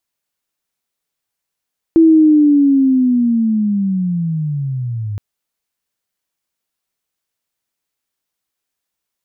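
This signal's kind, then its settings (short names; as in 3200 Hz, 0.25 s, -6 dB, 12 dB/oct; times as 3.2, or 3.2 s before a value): chirp linear 330 Hz -> 100 Hz -4.5 dBFS -> -19.5 dBFS 3.22 s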